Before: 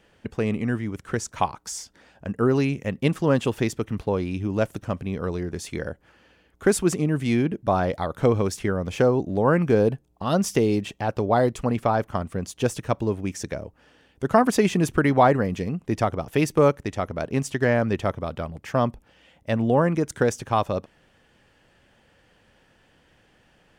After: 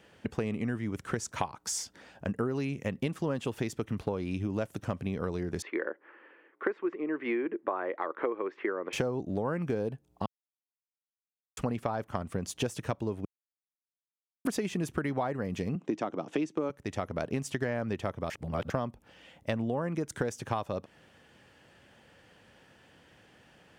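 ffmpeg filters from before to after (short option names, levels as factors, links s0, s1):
-filter_complex "[0:a]asettb=1/sr,asplit=3[s0][s1][s2];[s0]atrim=end=5.624[s3];[s1]atrim=start=5.62:end=8.93,asetpts=PTS-STARTPTS,afade=t=in:d=0.004:c=qsin,afade=t=out:st=3.306:d=0.004:c=qsin,highpass=f=340:w=0.5412,highpass=f=340:w=1.3066,equalizer=f=340:t=q:w=4:g=7,equalizer=f=710:t=q:w=4:g=-6,equalizer=f=1100:t=q:w=4:g=5,equalizer=f=1900:t=q:w=4:g=5,lowpass=f=2300:w=0.5412,lowpass=f=2300:w=1.3066[s4];[s2]atrim=start=8.926[s5];[s3][s4]acrossfade=d=0.004:c1=hsin:c2=qsin[s6];[s6][s5]acrossfade=d=0.004:c1=qsin:c2=hsin,asettb=1/sr,asplit=3[s7][s8][s9];[s7]atrim=end=15.754[s10];[s8]atrim=start=15.75:end=16.7,asetpts=PTS-STARTPTS,afade=t=in:d=0.004:c=qsin,afade=t=out:st=0.946:d=0.004:c=qsin,highpass=f=170:w=0.5412,highpass=f=170:w=1.3066,equalizer=f=310:t=q:w=4:g=8,equalizer=f=1900:t=q:w=4:g=-3,equalizer=f=4800:t=q:w=4:g=-6,lowpass=f=7000:w=0.5412,lowpass=f=7000:w=1.3066[s11];[s9]atrim=start=16.696[s12];[s10][s11]acrossfade=d=0.004:c1=hsin:c2=qsin[s13];[s13][s12]acrossfade=d=0.004:c1=qsin:c2=hsin,asplit=7[s14][s15][s16][s17][s18][s19][s20];[s14]atrim=end=10.26,asetpts=PTS-STARTPTS,afade=t=out:st=10.256:d=0.004:c=hsin[s21];[s15]atrim=start=10.26:end=11.57,asetpts=PTS-STARTPTS,volume=0[s22];[s16]atrim=start=11.57:end=13.25,asetpts=PTS-STARTPTS,afade=t=in:d=0.004:c=hsin,afade=t=out:st=1.676:d=0.004:c=hsin[s23];[s17]atrim=start=13.25:end=14.45,asetpts=PTS-STARTPTS,volume=0[s24];[s18]atrim=start=14.45:end=18.302,asetpts=PTS-STARTPTS,afade=t=in:d=0.004:c=hsin[s25];[s19]atrim=start=18.298:end=18.702,asetpts=PTS-STARTPTS,areverse[s26];[s20]atrim=start=18.698[s27];[s21][s22][s23][s24][s25]concat=n=5:v=0:a=1[s28];[s28][s26]acrossfade=d=0.004:c1=hsin:c2=hsin[s29];[s29][s27]acrossfade=d=0.004:c1=hsin:c2=hsin,highpass=77,acompressor=threshold=0.0355:ratio=10,volume=1.12"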